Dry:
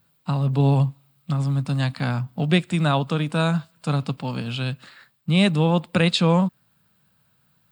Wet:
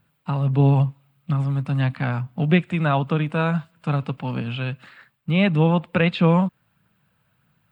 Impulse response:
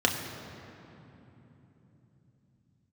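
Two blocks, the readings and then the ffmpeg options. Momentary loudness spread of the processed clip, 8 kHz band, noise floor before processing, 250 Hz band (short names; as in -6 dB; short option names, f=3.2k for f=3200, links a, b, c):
10 LU, under -15 dB, -65 dBFS, +0.5 dB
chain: -filter_complex "[0:a]highshelf=f=3.4k:t=q:w=1.5:g=-7,aphaser=in_gain=1:out_gain=1:delay=2.4:decay=0.23:speed=1.6:type=triangular,acrossover=split=3900[a][b];[b]acompressor=threshold=-54dB:ratio=4:attack=1:release=60[c];[a][c]amix=inputs=2:normalize=0"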